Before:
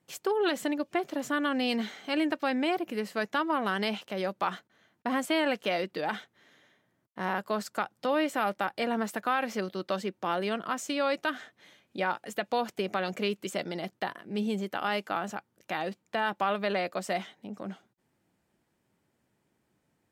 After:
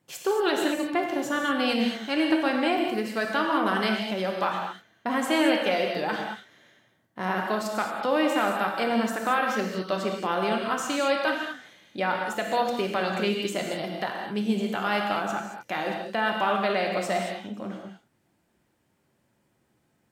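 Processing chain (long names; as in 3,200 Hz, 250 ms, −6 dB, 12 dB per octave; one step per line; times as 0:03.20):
reverb whose tail is shaped and stops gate 250 ms flat, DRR 0.5 dB
level +2 dB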